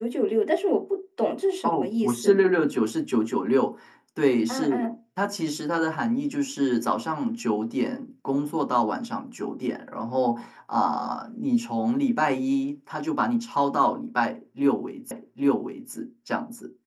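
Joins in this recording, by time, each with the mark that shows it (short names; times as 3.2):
15.11 repeat of the last 0.81 s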